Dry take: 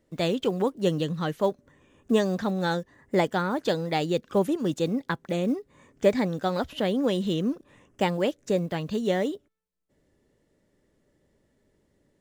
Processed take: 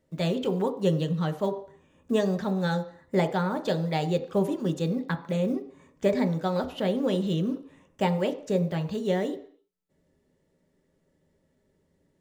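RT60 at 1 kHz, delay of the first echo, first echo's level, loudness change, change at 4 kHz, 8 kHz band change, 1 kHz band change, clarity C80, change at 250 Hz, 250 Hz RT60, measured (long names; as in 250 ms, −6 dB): 0.55 s, no echo audible, no echo audible, −1.0 dB, −3.5 dB, −3.5 dB, −2.0 dB, 16.5 dB, −0.5 dB, 0.50 s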